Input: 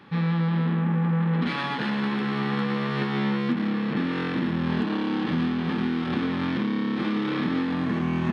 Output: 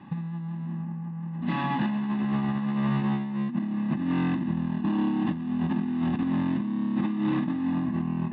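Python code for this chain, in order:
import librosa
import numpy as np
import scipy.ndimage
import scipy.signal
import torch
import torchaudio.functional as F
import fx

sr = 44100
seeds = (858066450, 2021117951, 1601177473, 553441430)

y = scipy.signal.sosfilt(scipy.signal.butter(4, 3300.0, 'lowpass', fs=sr, output='sos'), x)
y = fx.peak_eq(y, sr, hz=270.0, db=9.5, octaves=2.6)
y = fx.notch(y, sr, hz=1800.0, q=10.0)
y = y + 0.9 * np.pad(y, (int(1.1 * sr / 1000.0), 0))[:len(y)]
y = fx.over_compress(y, sr, threshold_db=-17.0, ratio=-0.5)
y = 10.0 ** (-6.0 / 20.0) * np.tanh(y / 10.0 ** (-6.0 / 20.0))
y = y * 10.0 ** (-9.0 / 20.0)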